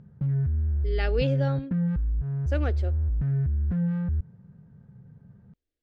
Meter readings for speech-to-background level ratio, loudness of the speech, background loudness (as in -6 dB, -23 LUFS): -5.0 dB, -32.5 LUFS, -27.5 LUFS